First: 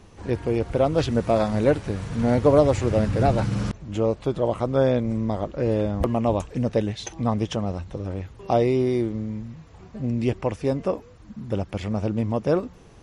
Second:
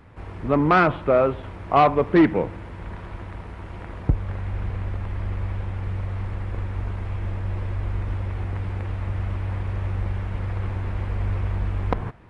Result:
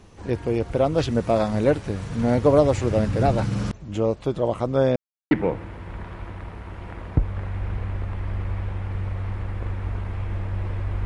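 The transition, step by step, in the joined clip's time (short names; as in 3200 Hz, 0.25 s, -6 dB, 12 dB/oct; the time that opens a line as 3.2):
first
4.96–5.31 mute
5.31 switch to second from 2.23 s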